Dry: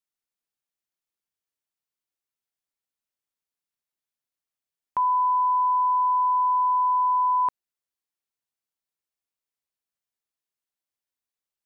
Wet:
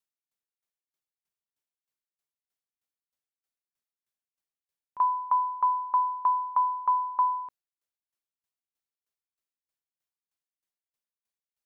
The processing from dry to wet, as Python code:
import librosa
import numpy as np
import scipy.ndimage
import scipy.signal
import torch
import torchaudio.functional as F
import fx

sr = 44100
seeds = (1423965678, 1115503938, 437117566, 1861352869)

y = fx.tremolo_decay(x, sr, direction='decaying', hz=3.2, depth_db=22)
y = y * 10.0 ** (2.0 / 20.0)